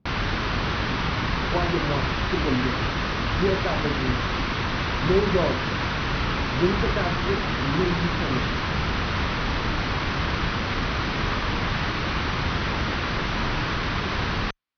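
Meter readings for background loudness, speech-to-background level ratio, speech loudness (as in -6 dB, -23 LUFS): -25.5 LUFS, -3.0 dB, -28.5 LUFS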